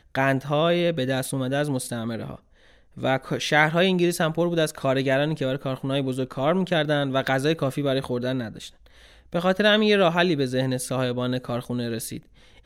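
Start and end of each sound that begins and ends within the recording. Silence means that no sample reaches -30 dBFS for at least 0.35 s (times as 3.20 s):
2.98–8.67 s
9.33–12.17 s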